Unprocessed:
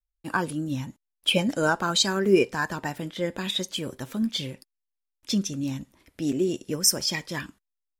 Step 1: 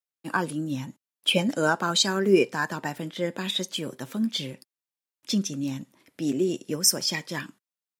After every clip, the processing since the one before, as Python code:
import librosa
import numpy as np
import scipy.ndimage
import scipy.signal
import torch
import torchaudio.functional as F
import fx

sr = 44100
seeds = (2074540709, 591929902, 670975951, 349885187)

y = scipy.signal.sosfilt(scipy.signal.butter(4, 130.0, 'highpass', fs=sr, output='sos'), x)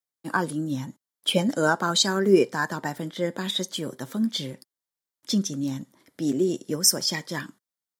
y = fx.peak_eq(x, sr, hz=2600.0, db=-12.0, octaves=0.29)
y = y * 10.0 ** (1.5 / 20.0)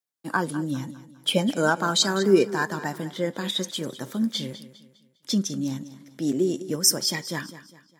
y = fx.echo_feedback(x, sr, ms=202, feedback_pct=39, wet_db=-15)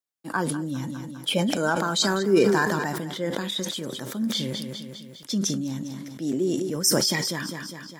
y = fx.sustainer(x, sr, db_per_s=23.0)
y = y * 10.0 ** (-3.0 / 20.0)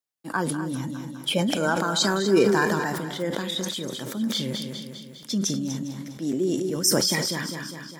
y = x + 10.0 ** (-11.0 / 20.0) * np.pad(x, (int(245 * sr / 1000.0), 0))[:len(x)]